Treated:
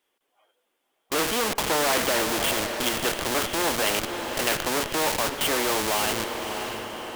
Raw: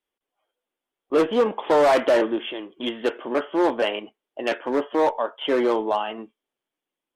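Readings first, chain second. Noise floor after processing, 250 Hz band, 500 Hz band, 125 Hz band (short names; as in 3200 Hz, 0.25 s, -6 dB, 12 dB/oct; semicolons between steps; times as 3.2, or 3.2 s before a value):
-76 dBFS, -5.0 dB, -6.5 dB, n/a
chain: in parallel at -4 dB: Schmitt trigger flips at -33 dBFS; on the sum: low shelf 150 Hz -12 dB; diffused feedback echo 0.589 s, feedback 40%, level -12.5 dB; spectral compressor 2:1; gain -2 dB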